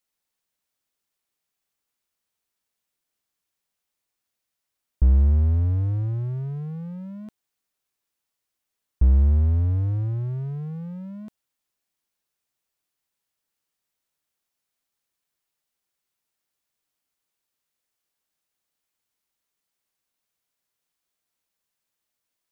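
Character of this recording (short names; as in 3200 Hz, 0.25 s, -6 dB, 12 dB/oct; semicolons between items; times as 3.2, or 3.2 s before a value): noise floor -83 dBFS; spectral tilt -13.5 dB/oct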